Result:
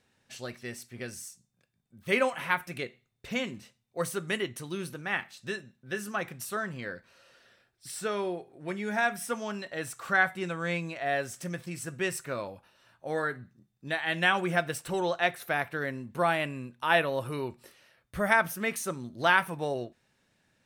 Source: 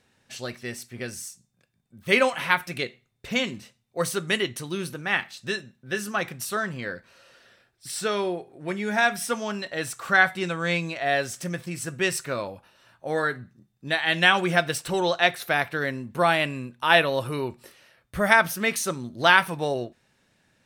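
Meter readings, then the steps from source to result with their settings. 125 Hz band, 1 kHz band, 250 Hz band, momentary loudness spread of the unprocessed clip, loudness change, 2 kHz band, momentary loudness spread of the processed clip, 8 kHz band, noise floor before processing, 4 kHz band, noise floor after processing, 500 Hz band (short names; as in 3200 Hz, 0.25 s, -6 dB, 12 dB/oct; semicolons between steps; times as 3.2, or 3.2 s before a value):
-5.0 dB, -5.5 dB, -5.0 dB, 16 LU, -6.0 dB, -6.0 dB, 16 LU, -7.0 dB, -70 dBFS, -9.5 dB, -75 dBFS, -5.0 dB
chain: dynamic EQ 4300 Hz, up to -7 dB, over -41 dBFS, Q 1.1; gain -5 dB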